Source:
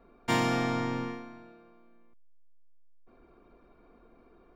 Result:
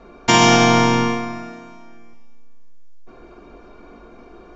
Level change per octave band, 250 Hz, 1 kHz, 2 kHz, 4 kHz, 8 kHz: +13.5, +16.5, +16.0, +19.5, +21.5 decibels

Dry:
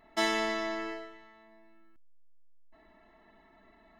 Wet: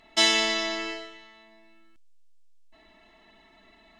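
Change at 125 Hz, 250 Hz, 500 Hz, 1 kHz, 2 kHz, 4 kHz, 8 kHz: can't be measured, +2.0 dB, +2.0 dB, +2.0 dB, +6.5 dB, +14.0 dB, +14.0 dB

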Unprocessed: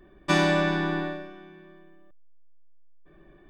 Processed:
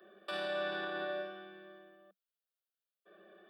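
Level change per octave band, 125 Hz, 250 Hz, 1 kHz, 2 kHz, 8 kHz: −29.0 dB, −21.5 dB, −12.5 dB, −11.5 dB, below −25 dB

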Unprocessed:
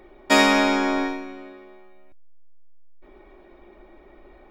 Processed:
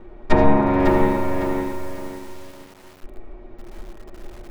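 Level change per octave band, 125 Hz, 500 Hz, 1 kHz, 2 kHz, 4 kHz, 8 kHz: can't be measured, +5.0 dB, +2.0 dB, −7.0 dB, −14.5 dB, −11.5 dB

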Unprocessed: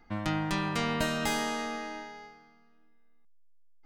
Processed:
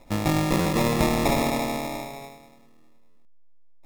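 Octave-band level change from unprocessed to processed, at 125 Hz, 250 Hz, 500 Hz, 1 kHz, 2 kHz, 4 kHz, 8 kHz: +9.5, +8.5, +10.0, +6.0, +2.5, +3.5, +6.5 decibels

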